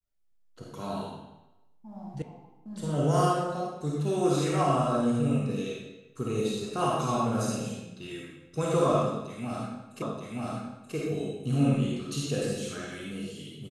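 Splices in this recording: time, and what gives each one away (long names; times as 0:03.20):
0:02.22: cut off before it has died away
0:10.02: the same again, the last 0.93 s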